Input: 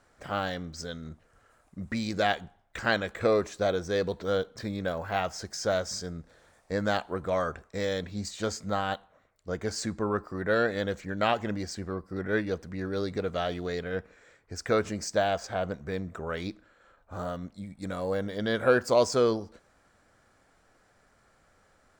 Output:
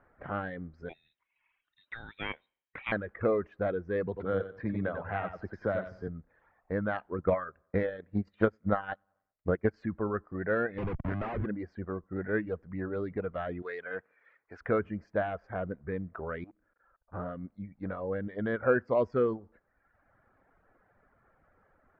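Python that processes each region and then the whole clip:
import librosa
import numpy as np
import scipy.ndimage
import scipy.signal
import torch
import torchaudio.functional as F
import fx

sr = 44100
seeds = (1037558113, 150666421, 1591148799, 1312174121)

y = fx.chain(x, sr, fx.low_shelf(hz=350.0, db=-10.0),
    fx.freq_invert(carrier_hz=3900), at=(0.89, 2.92))
y = fx.chain(y, sr, fx.echo_feedback(ms=91, feedback_pct=26, wet_db=-4.0),
    fx.band_squash(depth_pct=40), at=(4.07, 6.08))
y = fx.chain(y, sr, fx.echo_feedback(ms=94, feedback_pct=55, wet_db=-21.5),
    fx.transient(attack_db=10, sustain_db=-10), at=(7.18, 9.74))
y = fx.chain(y, sr, fx.schmitt(flips_db=-38.5),
    fx.band_squash(depth_pct=40), at=(10.78, 11.46))
y = fx.chain(y, sr, fx.highpass(hz=580.0, slope=6),
    fx.high_shelf(hz=2000.0, db=9.0), at=(13.62, 14.61))
y = fx.chain(y, sr, fx.level_steps(step_db=21),
    fx.transformer_sat(knee_hz=540.0), at=(16.44, 17.14))
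y = scipy.signal.sosfilt(scipy.signal.butter(4, 1900.0, 'lowpass', fs=sr, output='sos'), y)
y = fx.dereverb_blind(y, sr, rt60_s=0.96)
y = fx.dynamic_eq(y, sr, hz=830.0, q=1.0, threshold_db=-40.0, ratio=4.0, max_db=-6)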